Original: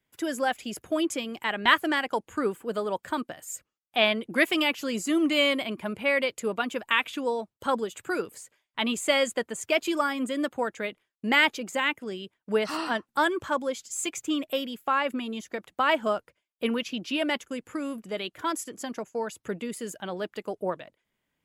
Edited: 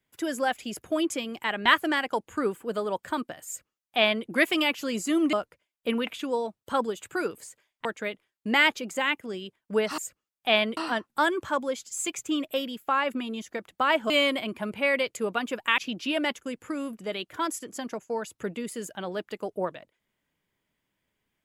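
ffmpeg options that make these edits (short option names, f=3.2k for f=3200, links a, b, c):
-filter_complex "[0:a]asplit=8[a][b][c][d][e][f][g][h];[a]atrim=end=5.332[i];[b]atrim=start=16.088:end=16.832[j];[c]atrim=start=7.008:end=8.792[k];[d]atrim=start=10.628:end=12.762[l];[e]atrim=start=3.468:end=4.262[m];[f]atrim=start=12.758:end=16.092[n];[g]atrim=start=5.328:end=7.012[o];[h]atrim=start=16.828[p];[i][j]acrossfade=d=0.004:c1=hsin:c2=hsin[q];[q][k]acrossfade=d=0.004:c1=hsin:c2=hsin[r];[r][l]acrossfade=d=0.004:c1=hsin:c2=hsin[s];[s][m]acrossfade=d=0.004:c1=hsin:c2=hsin[t];[t][n]acrossfade=d=0.004:c1=hsin:c2=hsin[u];[u][o]acrossfade=d=0.004:c1=hsin:c2=hsin[v];[v][p]acrossfade=d=0.004:c1=hsin:c2=hsin"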